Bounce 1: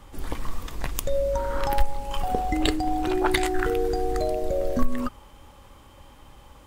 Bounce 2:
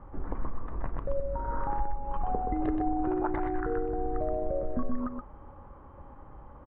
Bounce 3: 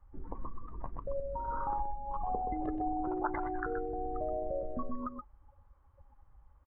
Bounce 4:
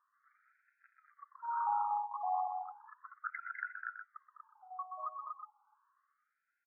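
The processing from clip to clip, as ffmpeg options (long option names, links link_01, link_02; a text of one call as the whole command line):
ffmpeg -i in.wav -filter_complex "[0:a]lowpass=frequency=1400:width=0.5412,lowpass=frequency=1400:width=1.3066,acompressor=threshold=-28dB:ratio=3,asplit=2[link_01][link_02];[link_02]aecho=0:1:125:0.531[link_03];[link_01][link_03]amix=inputs=2:normalize=0" out.wav
ffmpeg -i in.wav -af "afftdn=noise_reduction=21:noise_floor=-36,tiltshelf=frequency=970:gain=-8.5" out.wav
ffmpeg -i in.wav -af "asubboost=boost=10.5:cutoff=66,aecho=1:1:204.1|239.1:0.398|0.708,afftfilt=real='re*between(b*sr/1024,890*pow(1900/890,0.5+0.5*sin(2*PI*0.34*pts/sr))/1.41,890*pow(1900/890,0.5+0.5*sin(2*PI*0.34*pts/sr))*1.41)':imag='im*between(b*sr/1024,890*pow(1900/890,0.5+0.5*sin(2*PI*0.34*pts/sr))/1.41,890*pow(1900/890,0.5+0.5*sin(2*PI*0.34*pts/sr))*1.41)':win_size=1024:overlap=0.75,volume=1dB" out.wav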